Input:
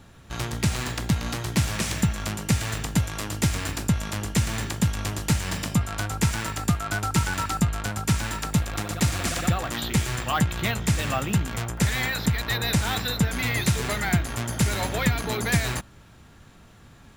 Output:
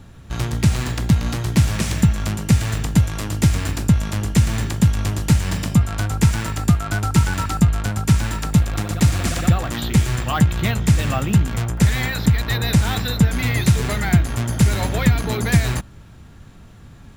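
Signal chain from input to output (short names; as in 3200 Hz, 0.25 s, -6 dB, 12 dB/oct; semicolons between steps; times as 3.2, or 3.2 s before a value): low shelf 270 Hz +8.5 dB; gain +1.5 dB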